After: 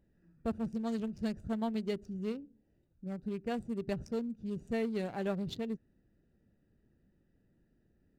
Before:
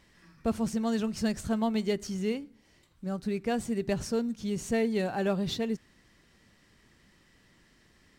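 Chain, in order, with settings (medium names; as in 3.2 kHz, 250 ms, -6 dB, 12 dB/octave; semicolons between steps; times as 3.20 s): local Wiener filter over 41 samples; trim -5.5 dB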